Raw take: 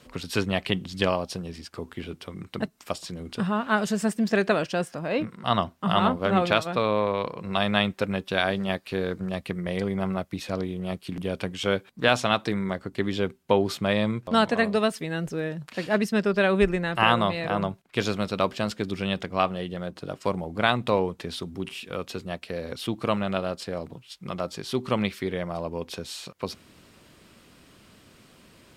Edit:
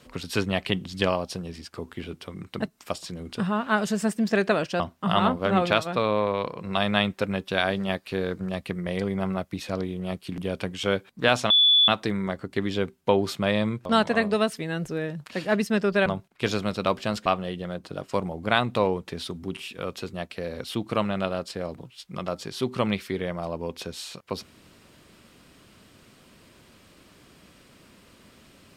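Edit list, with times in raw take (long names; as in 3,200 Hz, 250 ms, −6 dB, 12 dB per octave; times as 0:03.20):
0:04.80–0:05.60: remove
0:12.30: insert tone 3,450 Hz −14.5 dBFS 0.38 s
0:16.48–0:17.60: remove
0:18.80–0:19.38: remove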